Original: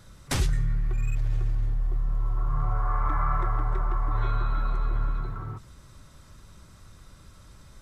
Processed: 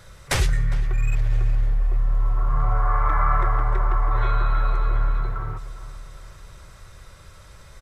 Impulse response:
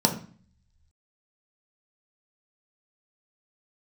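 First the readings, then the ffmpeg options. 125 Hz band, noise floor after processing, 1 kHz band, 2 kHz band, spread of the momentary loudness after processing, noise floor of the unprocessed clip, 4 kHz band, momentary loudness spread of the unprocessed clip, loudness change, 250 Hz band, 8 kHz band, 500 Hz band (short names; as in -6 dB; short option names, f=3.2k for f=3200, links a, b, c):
+4.0 dB, -47 dBFS, +6.5 dB, +8.5 dB, 11 LU, -52 dBFS, +5.5 dB, 5 LU, +5.5 dB, +0.5 dB, n/a, +6.5 dB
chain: -filter_complex "[0:a]equalizer=f=250:t=o:w=1:g=-11,equalizer=f=500:t=o:w=1:g=6,equalizer=f=2k:t=o:w=1:g=5,asplit=2[a][b];[b]adelay=406,lowpass=f=2.9k:p=1,volume=-15.5dB,asplit=2[c][d];[d]adelay=406,lowpass=f=2.9k:p=1,volume=0.55,asplit=2[e][f];[f]adelay=406,lowpass=f=2.9k:p=1,volume=0.55,asplit=2[g][h];[h]adelay=406,lowpass=f=2.9k:p=1,volume=0.55,asplit=2[i][j];[j]adelay=406,lowpass=f=2.9k:p=1,volume=0.55[k];[c][e][g][i][k]amix=inputs=5:normalize=0[l];[a][l]amix=inputs=2:normalize=0,volume=4.5dB"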